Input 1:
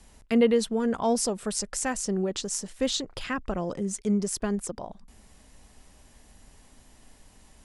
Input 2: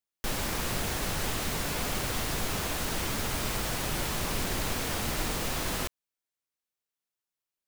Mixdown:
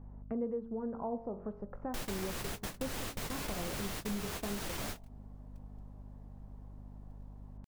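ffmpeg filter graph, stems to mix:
-filter_complex "[0:a]lowpass=f=1.1k:w=0.5412,lowpass=f=1.1k:w=1.3066,bandreject=f=45.86:t=h:w=4,bandreject=f=91.72:t=h:w=4,bandreject=f=137.58:t=h:w=4,bandreject=f=183.44:t=h:w=4,bandreject=f=229.3:t=h:w=4,bandreject=f=275.16:t=h:w=4,bandreject=f=321.02:t=h:w=4,bandreject=f=366.88:t=h:w=4,bandreject=f=412.74:t=h:w=4,bandreject=f=458.6:t=h:w=4,bandreject=f=504.46:t=h:w=4,bandreject=f=550.32:t=h:w=4,bandreject=f=596.18:t=h:w=4,bandreject=f=642.04:t=h:w=4,bandreject=f=687.9:t=h:w=4,bandreject=f=733.76:t=h:w=4,bandreject=f=779.62:t=h:w=4,bandreject=f=825.48:t=h:w=4,bandreject=f=871.34:t=h:w=4,bandreject=f=917.2:t=h:w=4,bandreject=f=963.06:t=h:w=4,bandreject=f=1.00892k:t=h:w=4,bandreject=f=1.05478k:t=h:w=4,bandreject=f=1.10064k:t=h:w=4,bandreject=f=1.1465k:t=h:w=4,bandreject=f=1.19236k:t=h:w=4,bandreject=f=1.23822k:t=h:w=4,bandreject=f=1.28408k:t=h:w=4,bandreject=f=1.32994k:t=h:w=4,bandreject=f=1.3758k:t=h:w=4,bandreject=f=1.42166k:t=h:w=4,bandreject=f=1.46752k:t=h:w=4,bandreject=f=1.51338k:t=h:w=4,bandreject=f=1.55924k:t=h:w=4,bandreject=f=1.6051k:t=h:w=4,aeval=exprs='val(0)+0.00447*(sin(2*PI*50*n/s)+sin(2*PI*2*50*n/s)/2+sin(2*PI*3*50*n/s)/3+sin(2*PI*4*50*n/s)/4+sin(2*PI*5*50*n/s)/5)':c=same,volume=-1dB,asplit=2[a][b];[1:a]adelay=1700,volume=1.5dB[c];[b]apad=whole_len=413351[d];[c][d]sidechaingate=range=-53dB:threshold=-40dB:ratio=16:detection=peak[e];[a][e]amix=inputs=2:normalize=0,acompressor=threshold=-40dB:ratio=2.5"

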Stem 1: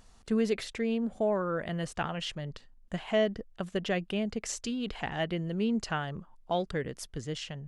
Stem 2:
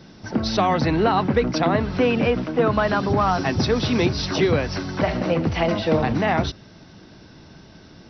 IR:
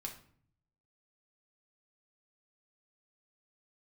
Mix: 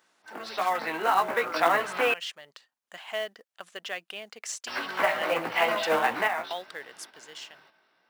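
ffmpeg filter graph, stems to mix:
-filter_complex "[0:a]volume=-7dB,asplit=2[a][b];[1:a]lowpass=2.5k,flanger=delay=16:depth=2.9:speed=1.6,volume=-0.5dB,asplit=3[c][d][e];[c]atrim=end=2.14,asetpts=PTS-STARTPTS,afade=t=out:st=2.136:d=0.004:c=hsin[f];[d]atrim=start=2.14:end=4.67,asetpts=PTS-STARTPTS,volume=0[g];[e]atrim=start=4.67,asetpts=PTS-STARTPTS,afade=t=in:d=0.004:c=hsin[h];[f][g][h]concat=n=3:v=0:a=1[i];[b]apad=whole_len=357142[j];[i][j]sidechaingate=range=-9dB:threshold=-53dB:ratio=16:detection=peak[k];[a][k]amix=inputs=2:normalize=0,highpass=910,dynaudnorm=f=330:g=7:m=8dB,acrusher=bits=5:mode=log:mix=0:aa=0.000001"

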